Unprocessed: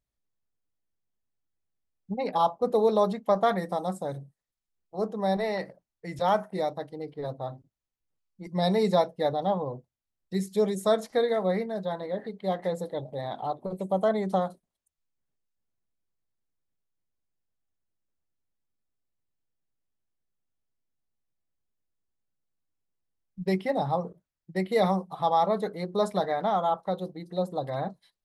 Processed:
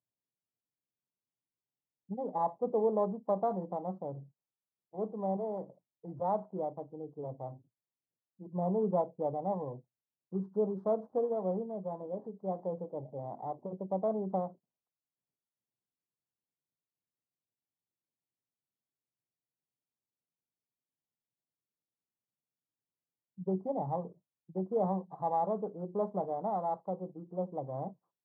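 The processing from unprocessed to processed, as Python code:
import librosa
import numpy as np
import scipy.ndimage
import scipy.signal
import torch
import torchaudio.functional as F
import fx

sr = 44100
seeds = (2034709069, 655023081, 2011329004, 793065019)

y = fx.bit_reversed(x, sr, seeds[0], block=16)
y = scipy.signal.sosfilt(scipy.signal.ellip(3, 1.0, 40, [110.0, 1000.0], 'bandpass', fs=sr, output='sos'), y)
y = F.gain(torch.from_numpy(y), -5.5).numpy()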